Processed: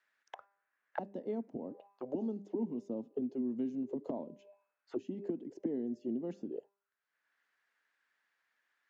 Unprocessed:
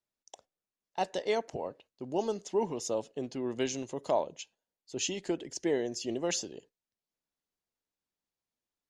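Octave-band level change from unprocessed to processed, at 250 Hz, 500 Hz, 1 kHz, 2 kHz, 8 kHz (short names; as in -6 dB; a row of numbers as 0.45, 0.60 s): +0.5 dB, -8.0 dB, -12.5 dB, under -15 dB, under -35 dB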